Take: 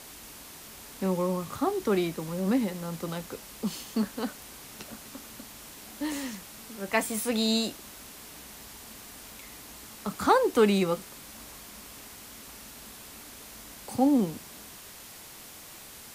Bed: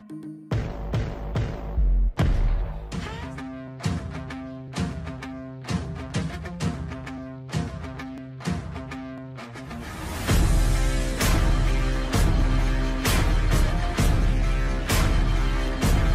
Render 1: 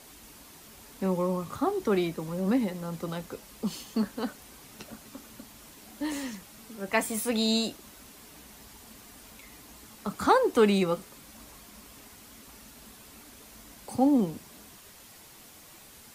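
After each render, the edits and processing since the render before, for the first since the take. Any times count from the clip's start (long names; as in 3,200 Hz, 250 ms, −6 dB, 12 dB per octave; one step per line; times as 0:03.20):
broadband denoise 6 dB, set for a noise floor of −47 dBFS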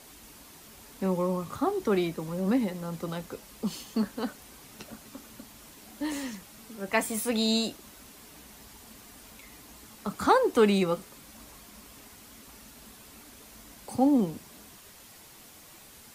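no processing that can be heard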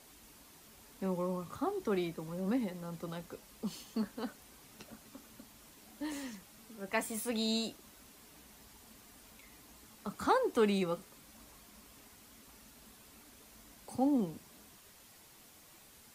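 level −7.5 dB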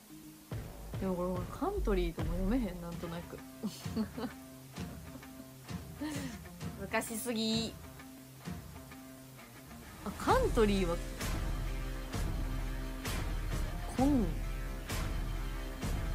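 mix in bed −15.5 dB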